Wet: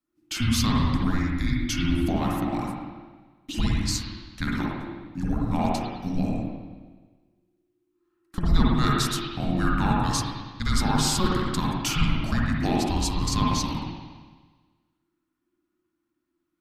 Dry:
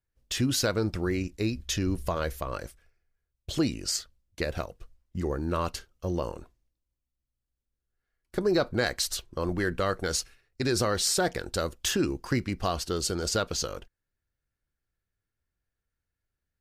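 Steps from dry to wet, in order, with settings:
spring reverb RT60 1.4 s, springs 52/57 ms, chirp 55 ms, DRR −4.5 dB
frequency shifter −360 Hz

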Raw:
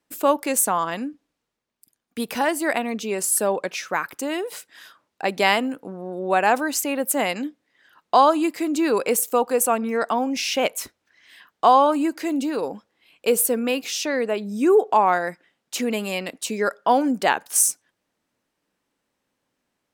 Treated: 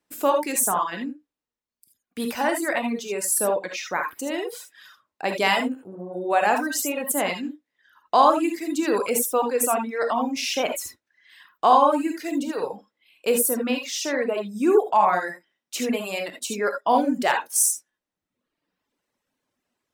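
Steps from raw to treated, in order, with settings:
reverb whose tail is shaped and stops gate 100 ms rising, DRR 1.5 dB
reverb reduction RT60 1 s
level −2.5 dB

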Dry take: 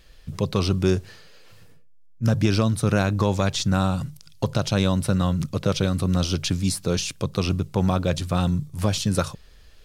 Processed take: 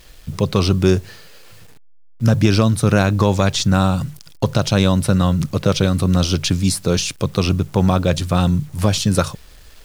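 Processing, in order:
bit reduction 9 bits
level +6 dB

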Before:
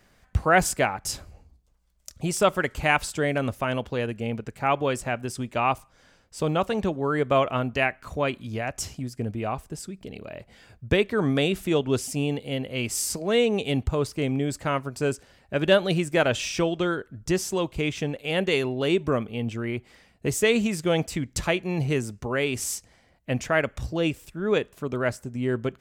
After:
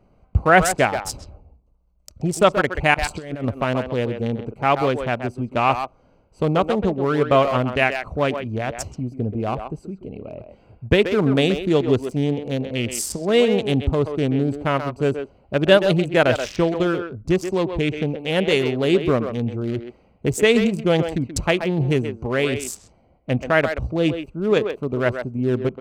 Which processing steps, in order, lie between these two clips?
adaptive Wiener filter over 25 samples
0:02.94–0:03.44: compressor whose output falls as the input rises −32 dBFS, ratio −0.5
far-end echo of a speakerphone 130 ms, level −7 dB
level +5.5 dB

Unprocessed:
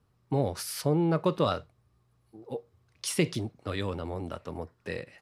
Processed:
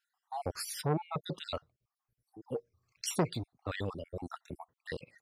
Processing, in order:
time-frequency cells dropped at random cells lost 53%
reverb reduction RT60 1.5 s
saturating transformer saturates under 700 Hz

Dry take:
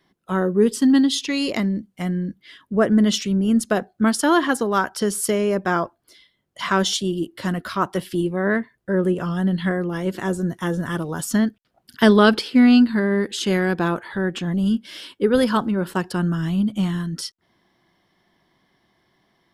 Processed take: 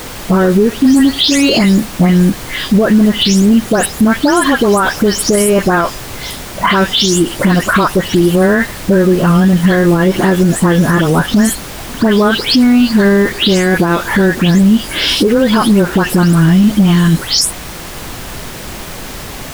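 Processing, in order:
every frequency bin delayed by itself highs late, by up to 227 ms
downward compressor 10 to 1, threshold −29 dBFS, peak gain reduction 20 dB
background noise pink −51 dBFS
boost into a limiter +26 dB
level −1 dB

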